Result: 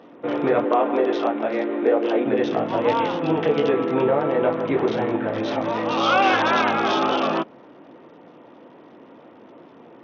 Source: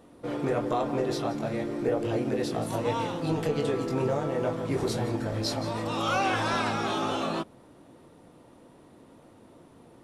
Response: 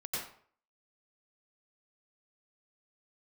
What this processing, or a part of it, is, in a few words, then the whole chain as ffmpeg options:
Bluetooth headset: -filter_complex "[0:a]asettb=1/sr,asplit=3[s0][s1][s2];[s0]atrim=end=0.644[s3];[s1]atrim=start=0.64:end=2.26,asetpts=PTS-STARTPTS,afade=t=in:d=0.004:c=qsin,afade=t=out:st=1.616:d=0.004:c=qsin,highpass=f=230:w=0.5412,highpass=f=230:w=1.3066[s4];[s2]atrim=start=2.256[s5];[s3][s4]acrossfade=d=0.004:c1=hsin:c2=qsin[s6];[s6][s5]acrossfade=d=0.004:c1=qsin:c2=hsin,highpass=240,aresample=8000,aresample=44100,volume=2.82" -ar 48000 -c:a sbc -b:a 64k

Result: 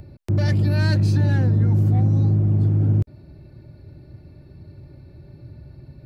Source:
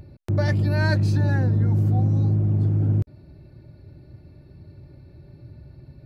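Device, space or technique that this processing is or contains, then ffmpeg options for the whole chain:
one-band saturation: -filter_complex "[0:a]acrossover=split=380|2300[s0][s1][s2];[s1]asoftclip=type=tanh:threshold=0.02[s3];[s0][s3][s2]amix=inputs=3:normalize=0,volume=1.33"

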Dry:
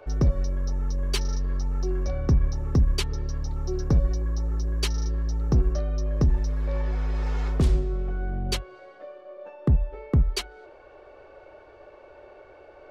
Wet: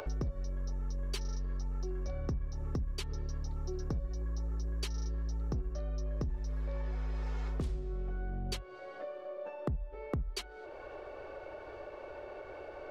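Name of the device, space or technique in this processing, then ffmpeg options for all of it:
upward and downward compression: -af "acompressor=mode=upward:threshold=0.0126:ratio=2.5,acompressor=threshold=0.0224:ratio=6,volume=0.891"

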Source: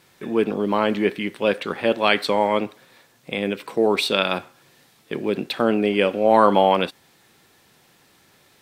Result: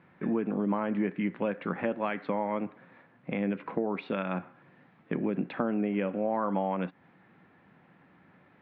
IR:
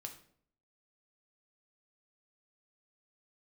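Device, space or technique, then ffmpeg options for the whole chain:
bass amplifier: -af "acompressor=threshold=0.0562:ratio=5,highpass=69,equalizer=f=180:t=q:w=4:g=9,equalizer=f=270:t=q:w=4:g=5,equalizer=f=410:t=q:w=4:g=-4,lowpass=f=2100:w=0.5412,lowpass=f=2100:w=1.3066,volume=0.794"

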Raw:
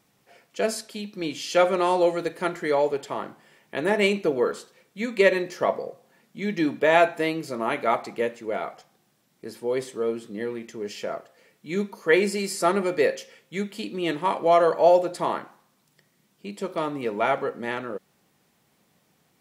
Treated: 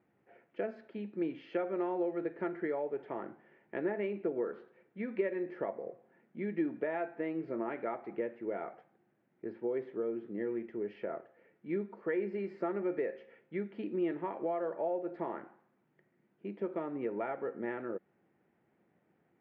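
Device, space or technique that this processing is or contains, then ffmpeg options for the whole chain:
bass amplifier: -af "acompressor=threshold=0.0398:ratio=4,highpass=73,equalizer=f=140:t=q:w=4:g=-3,equalizer=f=350:t=q:w=4:g=7,equalizer=f=1100:t=q:w=4:g=-7,lowpass=f=2000:w=0.5412,lowpass=f=2000:w=1.3066,volume=0.501"

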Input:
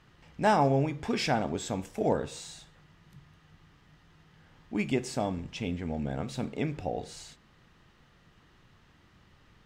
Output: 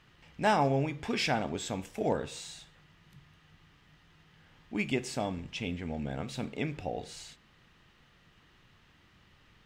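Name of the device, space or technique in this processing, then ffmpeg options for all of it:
presence and air boost: -af "equalizer=f=2700:t=o:w=1.4:g=5.5,highshelf=f=9700:g=4,volume=0.708"

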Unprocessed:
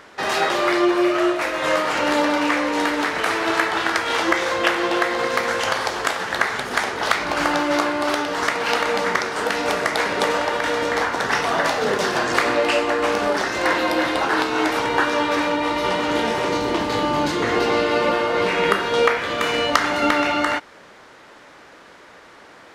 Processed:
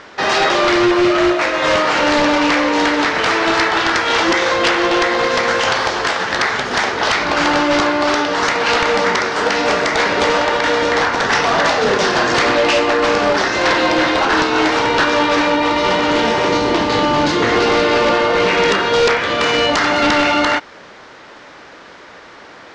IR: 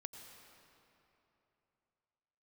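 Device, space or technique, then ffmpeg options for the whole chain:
synthesiser wavefolder: -af "aeval=exprs='0.188*(abs(mod(val(0)/0.188+3,4)-2)-1)':c=same,lowpass=f=6200:w=0.5412,lowpass=f=6200:w=1.3066,highshelf=f=6300:g=4.5,volume=2.11"

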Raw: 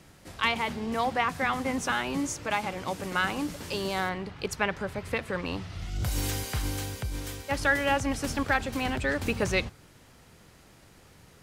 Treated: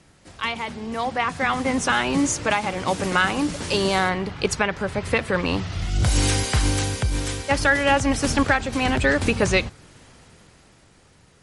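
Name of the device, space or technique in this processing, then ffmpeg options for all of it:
low-bitrate web radio: -af "dynaudnorm=f=250:g=13:m=6.31,alimiter=limit=0.447:level=0:latency=1:release=454" -ar 48000 -c:a libmp3lame -b:a 48k

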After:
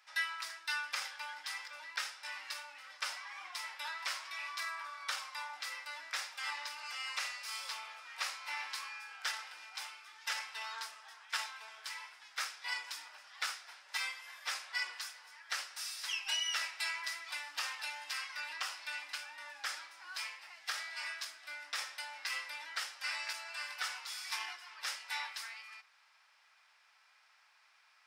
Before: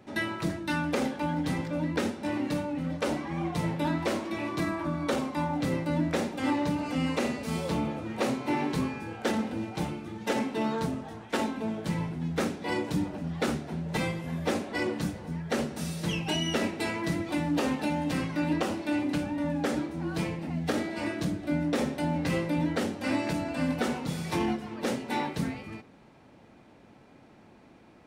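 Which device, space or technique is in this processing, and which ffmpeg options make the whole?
headphones lying on a table: -af "highpass=f=1200:w=0.5412,highpass=f=1200:w=1.3066,equalizer=f=5100:t=o:w=0.23:g=10,volume=0.794"

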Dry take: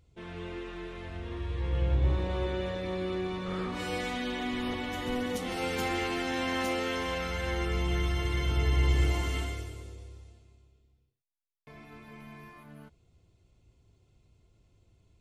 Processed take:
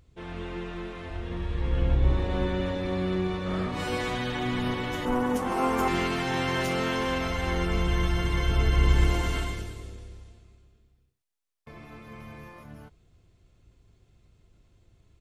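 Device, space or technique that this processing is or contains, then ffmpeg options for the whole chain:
octave pedal: -filter_complex "[0:a]asplit=2[s0][s1];[s1]asetrate=22050,aresample=44100,atempo=2,volume=0.708[s2];[s0][s2]amix=inputs=2:normalize=0,asettb=1/sr,asplit=3[s3][s4][s5];[s3]atrim=end=5.054[s6];[s4]atrim=start=5.05:end=5.88,asetpts=PTS-STARTPTS,afade=t=in:d=0.004:c=qsin,afade=t=out:st=0.826:d=0.004:c=qsin,equalizer=f=125:t=o:w=1:g=-8,equalizer=f=250:t=o:w=1:g=3,equalizer=f=1000:t=o:w=1:g=10,equalizer=f=2000:t=o:w=1:g=-3,equalizer=f=4000:t=o:w=1:g=-10[s7];[s5]atrim=start=5.876[s8];[s6][s7]acrossfade=d=0.004:c1=hsin:c2=qsin[s9];[s9][s8]acrossfade=d=0.004:c1=qsin:c2=hsin,volume=1.33"

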